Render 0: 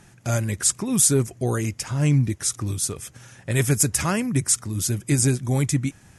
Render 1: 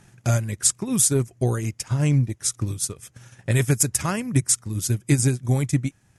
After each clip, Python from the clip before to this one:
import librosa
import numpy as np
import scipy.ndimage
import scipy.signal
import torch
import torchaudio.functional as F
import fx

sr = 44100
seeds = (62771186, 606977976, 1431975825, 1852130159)

y = fx.peak_eq(x, sr, hz=120.0, db=4.5, octaves=0.3)
y = fx.transient(y, sr, attack_db=6, sustain_db=-8)
y = y * librosa.db_to_amplitude(-3.0)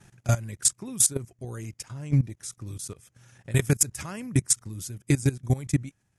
y = fx.level_steps(x, sr, step_db=18)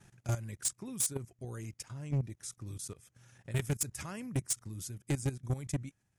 y = 10.0 ** (-20.5 / 20.0) * np.tanh(x / 10.0 ** (-20.5 / 20.0))
y = y * librosa.db_to_amplitude(-5.5)